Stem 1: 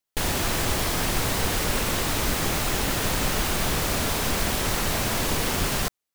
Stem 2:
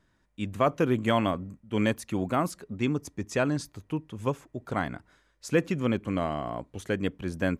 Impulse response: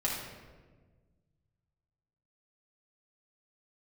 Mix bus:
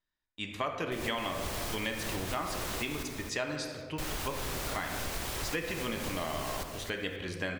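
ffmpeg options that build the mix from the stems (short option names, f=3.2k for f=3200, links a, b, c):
-filter_complex "[0:a]adelay=750,volume=-9dB,asplit=3[a][b][c];[a]atrim=end=3.03,asetpts=PTS-STARTPTS,afade=t=out:st=3.026:d=0.004:c=hsin[d];[b]atrim=start=3.03:end=3.98,asetpts=PTS-STARTPTS,volume=0[e];[c]atrim=start=3.98,asetpts=PTS-STARTPTS,afade=t=in:d=0.004:c=hsin[f];[d][e][f]concat=n=3:v=0:a=1,asplit=2[g][h];[h]volume=-10dB[i];[1:a]bandreject=f=68.75:t=h:w=4,bandreject=f=137.5:t=h:w=4,bandreject=f=206.25:t=h:w=4,bandreject=f=275:t=h:w=4,bandreject=f=343.75:t=h:w=4,bandreject=f=412.5:t=h:w=4,bandreject=f=481.25:t=h:w=4,bandreject=f=550:t=h:w=4,bandreject=f=618.75:t=h:w=4,bandreject=f=687.5:t=h:w=4,bandreject=f=756.25:t=h:w=4,bandreject=f=825:t=h:w=4,bandreject=f=893.75:t=h:w=4,bandreject=f=962.5:t=h:w=4,bandreject=f=1.03125k:t=h:w=4,bandreject=f=1.1k:t=h:w=4,bandreject=f=1.16875k:t=h:w=4,bandreject=f=1.2375k:t=h:w=4,bandreject=f=1.30625k:t=h:w=4,bandreject=f=1.375k:t=h:w=4,bandreject=f=1.44375k:t=h:w=4,bandreject=f=1.5125k:t=h:w=4,bandreject=f=1.58125k:t=h:w=4,bandreject=f=1.65k:t=h:w=4,bandreject=f=1.71875k:t=h:w=4,bandreject=f=1.7875k:t=h:w=4,bandreject=f=1.85625k:t=h:w=4,bandreject=f=1.925k:t=h:w=4,bandreject=f=1.99375k:t=h:w=4,bandreject=f=2.0625k:t=h:w=4,bandreject=f=2.13125k:t=h:w=4,bandreject=f=2.2k:t=h:w=4,bandreject=f=2.26875k:t=h:w=4,agate=range=-20dB:threshold=-59dB:ratio=16:detection=peak,equalizer=f=125:t=o:w=1:g=-8,equalizer=f=2k:t=o:w=1:g=4,equalizer=f=4k:t=o:w=1:g=10,volume=-5.5dB,asplit=3[j][k][l];[k]volume=-6dB[m];[l]apad=whole_len=304054[n];[g][n]sidechaincompress=threshold=-36dB:ratio=8:attack=40:release=215[o];[2:a]atrim=start_sample=2205[p];[m][p]afir=irnorm=-1:irlink=0[q];[i]aecho=0:1:264|528|792|1056:1|0.26|0.0676|0.0176[r];[o][j][q][r]amix=inputs=4:normalize=0,equalizer=f=210:w=1.7:g=-6,acompressor=threshold=-32dB:ratio=3"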